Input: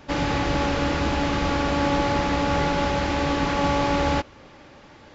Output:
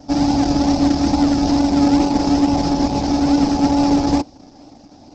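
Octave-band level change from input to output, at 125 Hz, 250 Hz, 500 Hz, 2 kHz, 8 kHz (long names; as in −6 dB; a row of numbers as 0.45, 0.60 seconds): +2.5 dB, +12.0 dB, +1.0 dB, −7.0 dB, can't be measured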